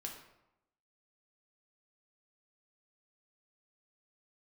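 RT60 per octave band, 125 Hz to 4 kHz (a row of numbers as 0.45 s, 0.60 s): 0.90 s, 0.90 s, 0.85 s, 0.90 s, 0.70 s, 0.55 s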